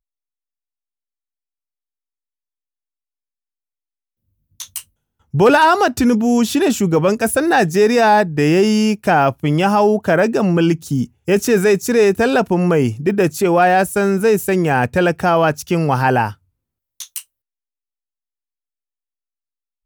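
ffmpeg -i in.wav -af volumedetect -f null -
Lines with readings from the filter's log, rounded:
mean_volume: -17.1 dB
max_volume: -2.6 dB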